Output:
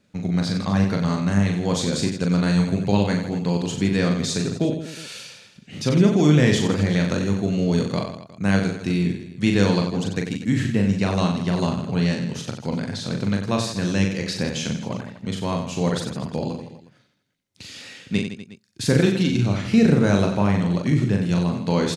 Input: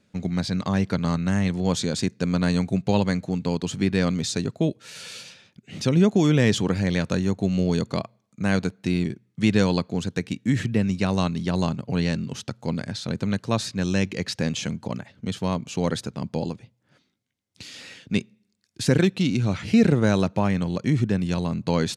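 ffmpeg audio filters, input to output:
ffmpeg -i in.wav -af "aecho=1:1:40|92|159.6|247.5|361.7:0.631|0.398|0.251|0.158|0.1" out.wav

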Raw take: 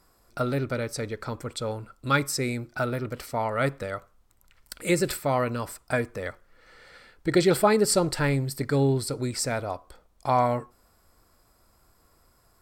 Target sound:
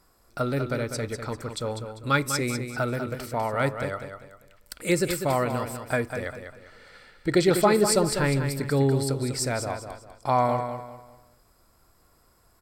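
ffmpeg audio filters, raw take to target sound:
ffmpeg -i in.wav -af "aecho=1:1:198|396|594|792:0.398|0.131|0.0434|0.0143" out.wav

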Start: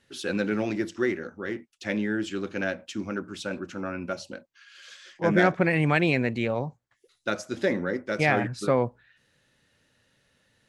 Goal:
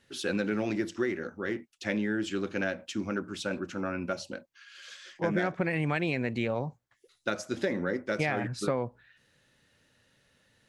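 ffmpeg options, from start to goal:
ffmpeg -i in.wav -af "acompressor=threshold=-25dB:ratio=6" out.wav

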